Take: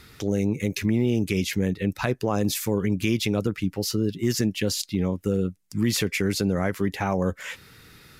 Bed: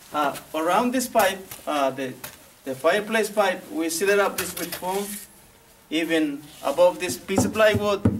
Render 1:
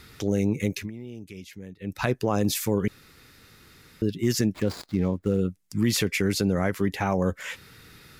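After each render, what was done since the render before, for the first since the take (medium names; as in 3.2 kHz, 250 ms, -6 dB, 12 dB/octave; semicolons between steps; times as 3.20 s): 0.68–2.03 s: dip -17 dB, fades 0.23 s; 2.88–4.02 s: room tone; 4.54–5.40 s: median filter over 15 samples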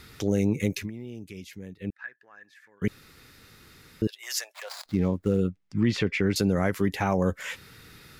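1.90–2.82 s: band-pass filter 1.7 kHz, Q 17; 4.07–4.86 s: steep high-pass 610 Hz 48 dB/octave; 5.49–6.36 s: low-pass 3.1 kHz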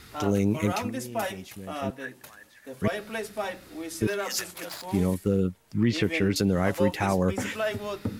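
add bed -11 dB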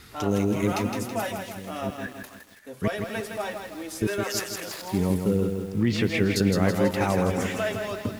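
bit-crushed delay 163 ms, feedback 55%, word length 8-bit, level -5.5 dB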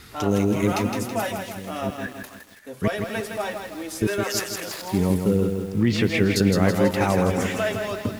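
trim +3 dB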